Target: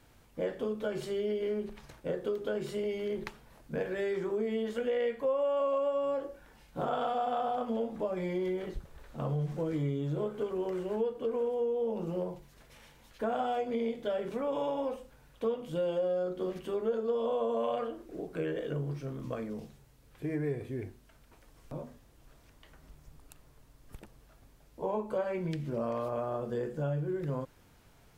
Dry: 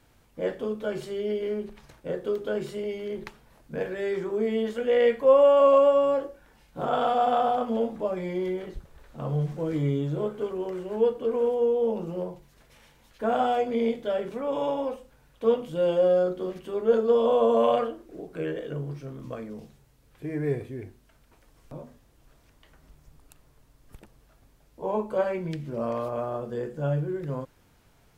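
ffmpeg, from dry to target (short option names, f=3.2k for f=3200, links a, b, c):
-af "acompressor=threshold=-30dB:ratio=4"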